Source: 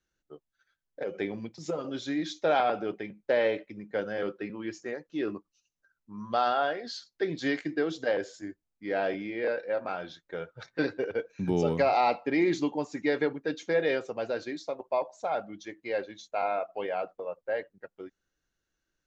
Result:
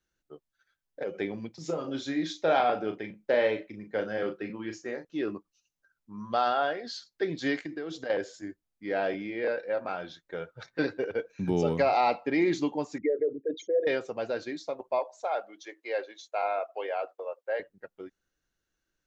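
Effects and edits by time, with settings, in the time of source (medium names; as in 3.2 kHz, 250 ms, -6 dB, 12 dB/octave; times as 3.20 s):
1.55–5.05 s: doubling 37 ms -8 dB
7.57–8.10 s: compression 4:1, threshold -33 dBFS
12.98–13.87 s: resonances exaggerated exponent 3
14.99–17.60 s: high-pass 380 Hz 24 dB/octave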